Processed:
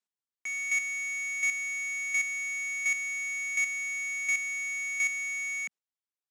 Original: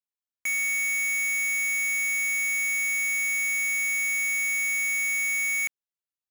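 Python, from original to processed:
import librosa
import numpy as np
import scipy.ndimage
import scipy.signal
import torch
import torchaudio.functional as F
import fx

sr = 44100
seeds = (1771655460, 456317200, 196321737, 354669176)

p1 = scipy.signal.sosfilt(scipy.signal.cheby1(3, 1.0, [190.0, 8400.0], 'bandpass', fs=sr, output='sos'), x)
p2 = np.clip(p1, -10.0 ** (-37.5 / 20.0), 10.0 ** (-37.5 / 20.0))
p3 = p1 + F.gain(torch.from_numpy(p2), -5.0).numpy()
y = fx.chopper(p3, sr, hz=1.4, depth_pct=60, duty_pct=10)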